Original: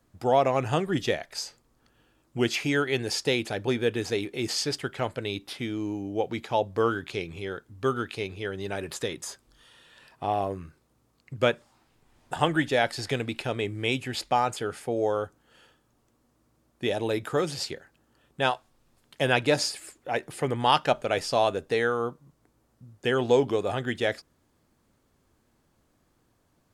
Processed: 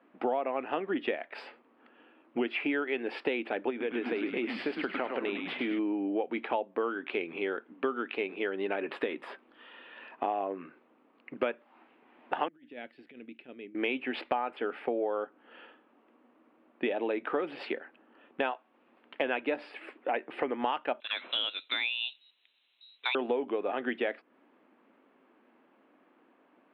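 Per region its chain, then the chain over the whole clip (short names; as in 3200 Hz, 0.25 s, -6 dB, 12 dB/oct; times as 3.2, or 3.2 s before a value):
3.7–5.79 compressor 2.5:1, threshold -31 dBFS + frequency-shifting echo 0.104 s, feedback 51%, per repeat -120 Hz, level -5.5 dB
12.48–13.75 passive tone stack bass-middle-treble 10-0-1 + negative-ratio compressor -47 dBFS, ratio -0.5
21–23.15 high shelf 3100 Hz -9 dB + inverted band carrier 4000 Hz
whole clip: elliptic band-pass 250–2700 Hz, stop band 40 dB; compressor 6:1, threshold -36 dBFS; gain +7.5 dB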